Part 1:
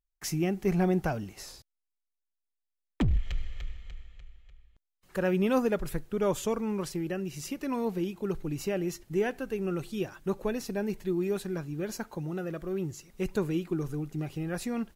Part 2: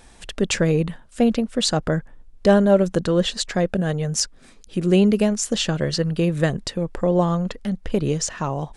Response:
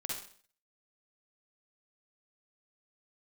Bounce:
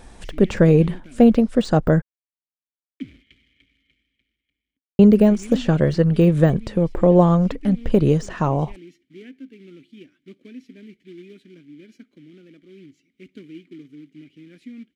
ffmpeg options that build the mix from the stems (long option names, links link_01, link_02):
-filter_complex "[0:a]highpass=frequency=47:width=0.5412,highpass=frequency=47:width=1.3066,acrusher=bits=3:mode=log:mix=0:aa=0.000001,asplit=3[link_01][link_02][link_03];[link_01]bandpass=frequency=270:width_type=q:width=8,volume=0dB[link_04];[link_02]bandpass=frequency=2290:width_type=q:width=8,volume=-6dB[link_05];[link_03]bandpass=frequency=3010:width_type=q:width=8,volume=-9dB[link_06];[link_04][link_05][link_06]amix=inputs=3:normalize=0,volume=2dB[link_07];[1:a]deesser=0.95,tiltshelf=frequency=1400:gain=4,volume=2dB,asplit=3[link_08][link_09][link_10];[link_08]atrim=end=2.02,asetpts=PTS-STARTPTS,afade=type=out:start_time=2.016:duration=0.004:curve=hsin[link_11];[link_09]atrim=start=2.02:end=4.99,asetpts=PTS-STARTPTS,volume=0[link_12];[link_10]atrim=start=4.99,asetpts=PTS-STARTPTS,afade=type=in:duration=0.004:curve=hsin[link_13];[link_11][link_12][link_13]concat=n=3:v=0:a=1[link_14];[link_07][link_14]amix=inputs=2:normalize=0"